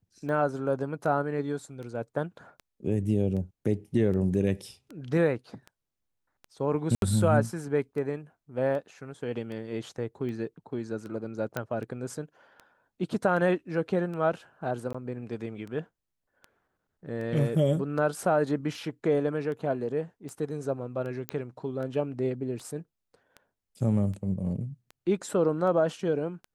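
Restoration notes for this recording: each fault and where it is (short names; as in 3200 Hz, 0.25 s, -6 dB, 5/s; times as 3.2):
tick 78 rpm -29 dBFS
6.95–7.02 gap 72 ms
11.57 pop -16 dBFS
14.93–14.95 gap 15 ms
21.29 pop -15 dBFS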